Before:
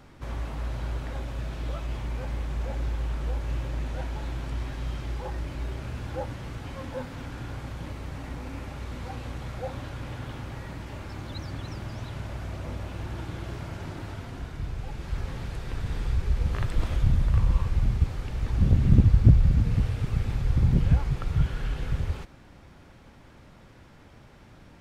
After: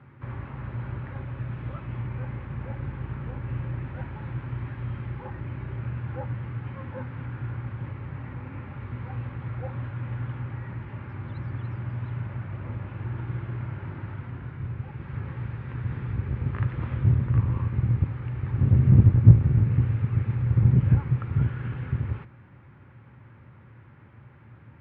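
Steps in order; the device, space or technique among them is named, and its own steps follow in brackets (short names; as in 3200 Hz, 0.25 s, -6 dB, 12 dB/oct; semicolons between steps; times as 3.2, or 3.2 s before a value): sub-octave bass pedal (octaver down 1 oct, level -2 dB; speaker cabinet 81–2300 Hz, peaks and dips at 120 Hz +9 dB, 180 Hz -3 dB, 290 Hz -4 dB, 460 Hz -5 dB, 680 Hz -10 dB)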